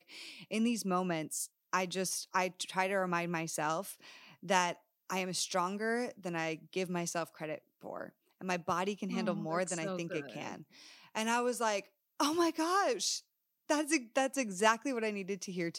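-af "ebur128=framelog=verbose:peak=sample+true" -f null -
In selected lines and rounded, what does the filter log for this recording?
Integrated loudness:
  I:         -34.5 LUFS
  Threshold: -45.1 LUFS
Loudness range:
  LRA:         4.8 LU
  Threshold: -55.3 LUFS
  LRA low:   -37.7 LUFS
  LRA high:  -32.9 LUFS
Sample peak:
  Peak:      -13.4 dBFS
True peak:
  Peak:      -13.3 dBFS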